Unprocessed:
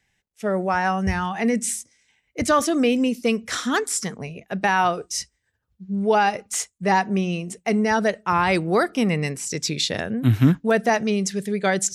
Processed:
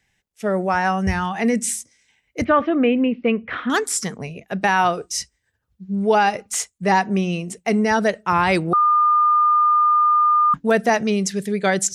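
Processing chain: 2.44–3.70 s: steep low-pass 2.8 kHz 36 dB/octave; 8.73–10.54 s: bleep 1.21 kHz -14.5 dBFS; trim +2 dB

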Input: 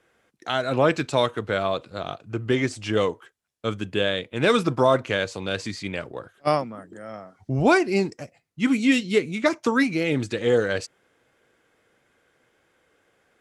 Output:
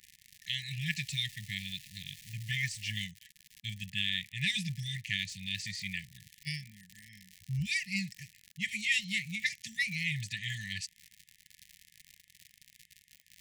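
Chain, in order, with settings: bass shelf 190 Hz -7 dB; crackle 140 per s -33 dBFS, from 0.86 s 480 per s, from 3.04 s 110 per s; brick-wall FIR band-stop 200–1700 Hz; trim -3 dB

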